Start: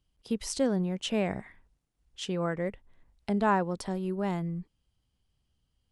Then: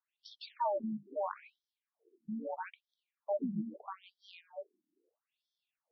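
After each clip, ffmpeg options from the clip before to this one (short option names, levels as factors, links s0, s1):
-af "aeval=exprs='val(0)*sin(2*PI*400*n/s)':c=same,bandreject=f=50:t=h:w=6,bandreject=f=100:t=h:w=6,bandreject=f=150:t=h:w=6,bandreject=f=200:t=h:w=6,afftfilt=real='re*between(b*sr/1024,230*pow(4500/230,0.5+0.5*sin(2*PI*0.77*pts/sr))/1.41,230*pow(4500/230,0.5+0.5*sin(2*PI*0.77*pts/sr))*1.41)':imag='im*between(b*sr/1024,230*pow(4500/230,0.5+0.5*sin(2*PI*0.77*pts/sr))/1.41,230*pow(4500/230,0.5+0.5*sin(2*PI*0.77*pts/sr))*1.41)':win_size=1024:overlap=0.75,volume=1.26"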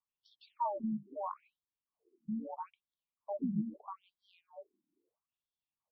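-af "firequalizer=gain_entry='entry(130,0);entry(490,-13);entry(1100,-3);entry(1600,-28);entry(2700,-16);entry(6200,-23)':delay=0.05:min_phase=1,volume=1.88"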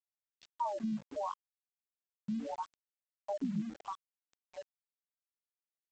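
-af "acompressor=threshold=0.0112:ratio=2.5,aresample=16000,aeval=exprs='val(0)*gte(abs(val(0)),0.00224)':c=same,aresample=44100,volume=1.68"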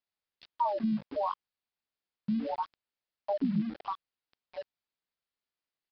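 -af "aresample=11025,aresample=44100,volume=2"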